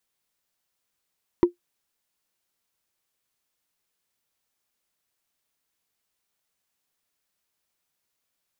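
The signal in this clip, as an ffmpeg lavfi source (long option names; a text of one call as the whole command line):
ffmpeg -f lavfi -i "aevalsrc='0.398*pow(10,-3*t/0.12)*sin(2*PI*350*t)+0.106*pow(10,-3*t/0.036)*sin(2*PI*965*t)+0.0282*pow(10,-3*t/0.016)*sin(2*PI*1891.4*t)+0.0075*pow(10,-3*t/0.009)*sin(2*PI*3126.5*t)+0.002*pow(10,-3*t/0.005)*sin(2*PI*4669*t)':duration=0.45:sample_rate=44100" out.wav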